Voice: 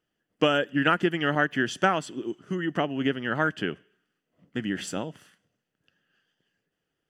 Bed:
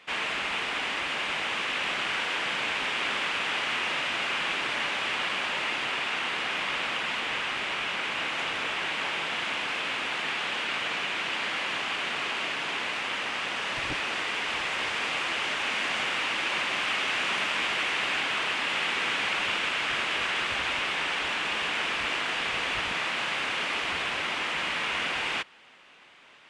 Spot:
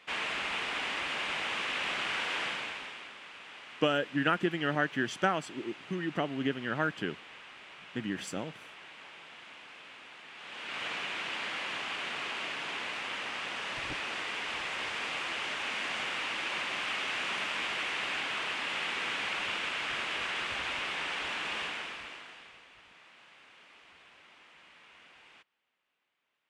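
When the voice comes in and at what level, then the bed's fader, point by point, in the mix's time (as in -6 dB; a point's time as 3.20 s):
3.40 s, -5.5 dB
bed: 2.44 s -4 dB
3.14 s -19.5 dB
10.30 s -19.5 dB
10.83 s -6 dB
21.61 s -6 dB
22.69 s -27.5 dB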